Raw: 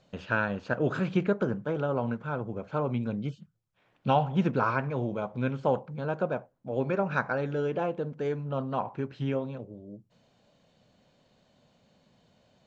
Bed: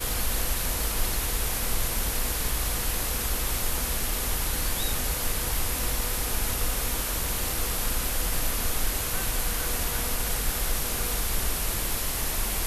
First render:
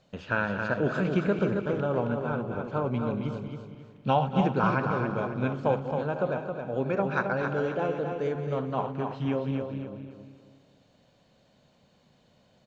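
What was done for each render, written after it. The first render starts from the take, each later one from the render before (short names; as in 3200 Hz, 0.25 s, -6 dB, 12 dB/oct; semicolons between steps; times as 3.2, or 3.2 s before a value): regenerating reverse delay 0.116 s, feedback 59%, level -10.5 dB; feedback echo 0.269 s, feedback 35%, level -6 dB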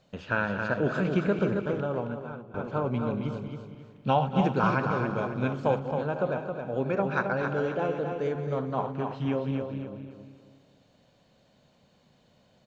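1.63–2.54 fade out, to -16.5 dB; 4.44–5.79 high shelf 5300 Hz +7.5 dB; 8.42–8.94 bell 2800 Hz -8 dB 0.25 oct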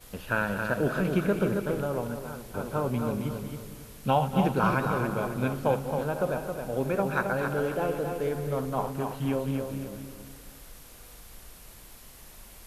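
add bed -21 dB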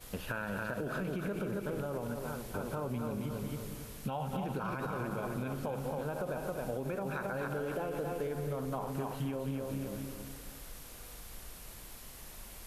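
limiter -21.5 dBFS, peak gain reduction 11 dB; compressor, threshold -33 dBFS, peak gain reduction 7.5 dB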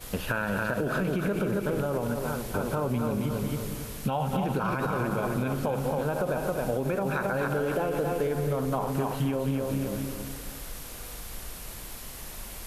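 gain +8.5 dB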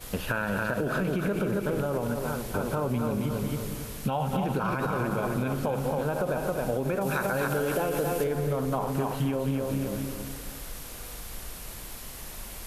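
7.01–8.24 high shelf 3900 Hz +9.5 dB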